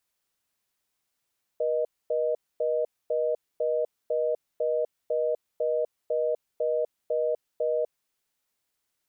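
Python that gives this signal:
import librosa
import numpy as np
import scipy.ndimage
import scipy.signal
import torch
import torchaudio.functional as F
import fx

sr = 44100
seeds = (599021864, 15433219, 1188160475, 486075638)

y = fx.call_progress(sr, length_s=6.26, kind='reorder tone', level_db=-26.0)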